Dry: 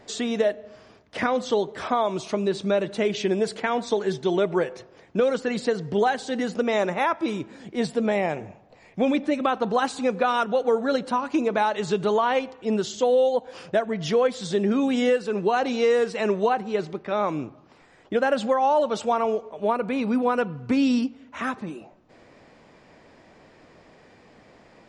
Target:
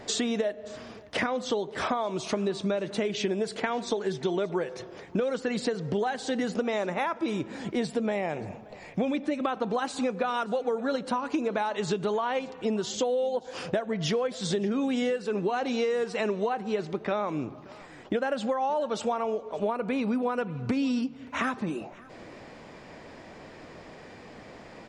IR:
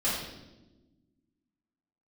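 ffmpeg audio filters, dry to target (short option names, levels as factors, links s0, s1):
-filter_complex "[0:a]acompressor=threshold=0.0251:ratio=6,asplit=2[s0][s1];[s1]aecho=0:1:577:0.075[s2];[s0][s2]amix=inputs=2:normalize=0,volume=2"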